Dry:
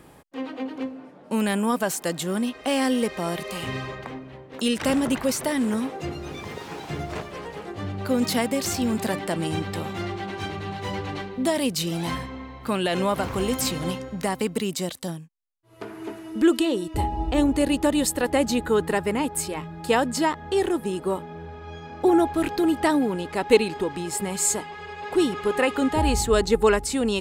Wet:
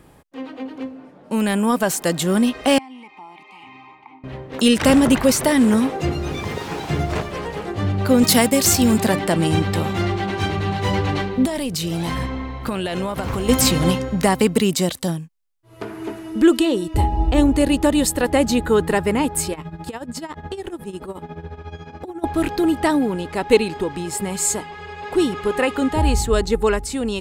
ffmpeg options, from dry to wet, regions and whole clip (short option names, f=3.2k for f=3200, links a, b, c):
-filter_complex "[0:a]asettb=1/sr,asplit=3[a][b][c];[a]atrim=end=2.784[d];[b]atrim=start=2.78:end=4.24,asetpts=PTS-STARTPTS,afade=t=in:d=0.004:c=qsin,afade=t=out:st=1.456:d=0.004:c=qsin,lowshelf=f=550:t=q:w=1.5:g=-11,acompressor=threshold=-30dB:ratio=4:attack=3.2:release=140:knee=1:detection=peak,asplit=3[e][f][g];[e]bandpass=f=300:t=q:w=8,volume=0dB[h];[f]bandpass=f=870:t=q:w=8,volume=-6dB[i];[g]bandpass=f=2.24k:t=q:w=8,volume=-9dB[j];[h][i][j]amix=inputs=3:normalize=0[k];[c]atrim=start=4.236[l];[d][k]acrossfade=d=0.004:c1=hsin:c2=qsin[m];[m][l]acrossfade=d=0.004:c1=qsin:c2=hsin,asettb=1/sr,asplit=3[n][o][p];[n]atrim=end=8.234[q];[o]atrim=start=8.23:end=8.98,asetpts=PTS-STARTPTS,afade=t=in:d=0.004:c=qsin,afade=t=out:st=0.746:d=0.004:c=qsin,agate=range=-33dB:threshold=-28dB:ratio=3:release=100:detection=peak,highshelf=f=5.5k:g=9[r];[p]atrim=start=8.976[s];[q][r]acrossfade=d=0.004:c1=hsin:c2=qsin[t];[t][s]acrossfade=d=0.004:c1=qsin:c2=hsin,asettb=1/sr,asplit=3[u][v][w];[u]atrim=end=11.454[x];[v]atrim=start=11.45:end=13.49,asetpts=PTS-STARTPTS,afade=t=in:d=0.004:c=qsin,afade=t=out:st=2.036:d=0.004:c=qsin,acompressor=threshold=-28dB:ratio=10:attack=3.2:release=140:knee=1:detection=peak,tremolo=f=270:d=0.333[y];[w]atrim=start=13.486[z];[x][y]acrossfade=d=0.004:c1=hsin:c2=qsin[aa];[aa][z]acrossfade=d=0.004:c1=qsin:c2=hsin,asettb=1/sr,asplit=3[ab][ac][ad];[ab]atrim=end=19.534[ae];[ac]atrim=start=19.53:end=22.24,asetpts=PTS-STARTPTS,afade=t=in:d=0.004:c=qsin,afade=t=out:st=2.706:d=0.004:c=qsin,acompressor=threshold=-31dB:ratio=8:attack=3.2:release=140:knee=1:detection=peak,tremolo=f=14:d=0.77[af];[ad]atrim=start=22.236[ag];[ae][af]acrossfade=d=0.004:c1=hsin:c2=qsin[ah];[ah][ag]acrossfade=d=0.004:c1=qsin:c2=hsin,lowshelf=f=110:g=7.5,dynaudnorm=f=410:g=9:m=11.5dB,volume=-1dB"